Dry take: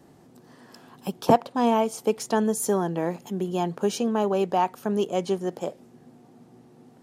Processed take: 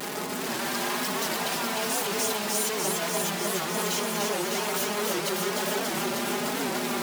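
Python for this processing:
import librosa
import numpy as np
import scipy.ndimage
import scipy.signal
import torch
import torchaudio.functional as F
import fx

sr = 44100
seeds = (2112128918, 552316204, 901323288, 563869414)

p1 = np.sign(x) * np.sqrt(np.mean(np.square(x)))
p2 = p1 + 0.7 * np.pad(p1, (int(4.9 * sr / 1000.0), 0))[:len(p1)]
p3 = p2 + fx.echo_alternate(p2, sr, ms=149, hz=1200.0, feedback_pct=90, wet_db=-2.0, dry=0)
p4 = fx.vibrato(p3, sr, rate_hz=1.1, depth_cents=54.0)
p5 = fx.highpass(p4, sr, hz=570.0, slope=6)
p6 = fx.record_warp(p5, sr, rpm=78.0, depth_cents=160.0)
y = p6 * 10.0 ** (-4.5 / 20.0)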